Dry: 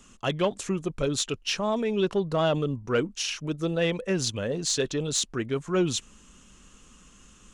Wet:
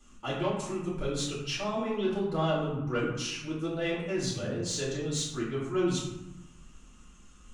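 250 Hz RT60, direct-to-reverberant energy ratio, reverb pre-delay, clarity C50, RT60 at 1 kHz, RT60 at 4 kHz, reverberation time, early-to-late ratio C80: 1.3 s, -8.0 dB, 3 ms, 2.5 dB, 1.1 s, 0.55 s, 1.0 s, 5.0 dB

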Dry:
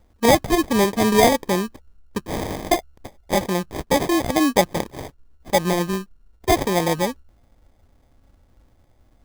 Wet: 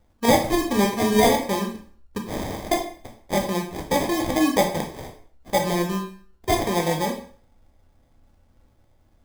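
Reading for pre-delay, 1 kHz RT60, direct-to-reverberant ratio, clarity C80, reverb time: 6 ms, 0.45 s, 2.0 dB, 12.0 dB, 0.45 s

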